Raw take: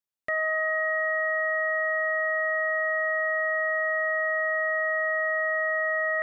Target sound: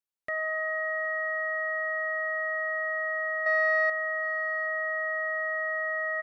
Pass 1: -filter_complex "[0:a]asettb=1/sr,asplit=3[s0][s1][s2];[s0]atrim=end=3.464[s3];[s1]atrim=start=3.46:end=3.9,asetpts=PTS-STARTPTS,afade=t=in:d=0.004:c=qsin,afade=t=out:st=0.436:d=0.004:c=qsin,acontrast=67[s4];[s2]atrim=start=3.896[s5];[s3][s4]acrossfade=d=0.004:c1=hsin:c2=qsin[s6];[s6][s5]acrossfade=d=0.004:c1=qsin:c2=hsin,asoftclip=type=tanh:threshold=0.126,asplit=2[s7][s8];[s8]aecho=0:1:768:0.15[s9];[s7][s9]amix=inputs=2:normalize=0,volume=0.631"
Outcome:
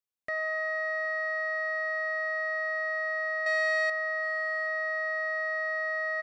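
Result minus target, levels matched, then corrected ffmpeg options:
saturation: distortion +16 dB
-filter_complex "[0:a]asettb=1/sr,asplit=3[s0][s1][s2];[s0]atrim=end=3.464[s3];[s1]atrim=start=3.46:end=3.9,asetpts=PTS-STARTPTS,afade=t=in:d=0.004:c=qsin,afade=t=out:st=0.436:d=0.004:c=qsin,acontrast=67[s4];[s2]atrim=start=3.896[s5];[s3][s4]acrossfade=d=0.004:c1=hsin:c2=qsin[s6];[s6][s5]acrossfade=d=0.004:c1=qsin:c2=hsin,asoftclip=type=tanh:threshold=0.398,asplit=2[s7][s8];[s8]aecho=0:1:768:0.15[s9];[s7][s9]amix=inputs=2:normalize=0,volume=0.631"

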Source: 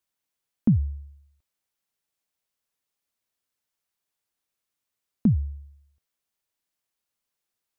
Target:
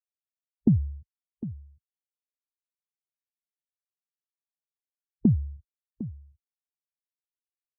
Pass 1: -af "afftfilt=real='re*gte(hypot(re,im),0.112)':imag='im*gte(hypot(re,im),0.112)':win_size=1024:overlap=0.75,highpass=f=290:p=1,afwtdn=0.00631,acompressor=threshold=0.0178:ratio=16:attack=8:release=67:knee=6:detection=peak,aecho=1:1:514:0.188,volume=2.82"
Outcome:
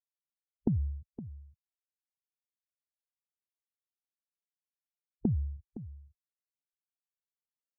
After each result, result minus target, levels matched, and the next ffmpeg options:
compression: peak gain reduction +10.5 dB; echo 241 ms early
-af "afftfilt=real='re*gte(hypot(re,im),0.112)':imag='im*gte(hypot(re,im),0.112)':win_size=1024:overlap=0.75,highpass=f=290:p=1,afwtdn=0.00631,acompressor=threshold=0.0631:ratio=16:attack=8:release=67:knee=6:detection=peak,aecho=1:1:514:0.188,volume=2.82"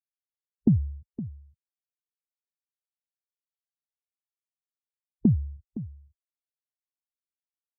echo 241 ms early
-af "afftfilt=real='re*gte(hypot(re,im),0.112)':imag='im*gte(hypot(re,im),0.112)':win_size=1024:overlap=0.75,highpass=f=290:p=1,afwtdn=0.00631,acompressor=threshold=0.0631:ratio=16:attack=8:release=67:knee=6:detection=peak,aecho=1:1:755:0.188,volume=2.82"

